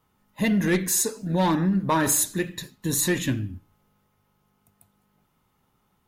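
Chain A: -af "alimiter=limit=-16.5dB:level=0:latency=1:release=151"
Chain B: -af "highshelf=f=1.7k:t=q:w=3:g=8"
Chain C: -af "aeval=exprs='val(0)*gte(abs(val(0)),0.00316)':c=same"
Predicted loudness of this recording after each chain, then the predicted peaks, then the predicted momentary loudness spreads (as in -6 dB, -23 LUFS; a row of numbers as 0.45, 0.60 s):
-25.5, -18.0, -23.5 LUFS; -16.5, -3.5, -11.5 dBFS; 9, 12, 10 LU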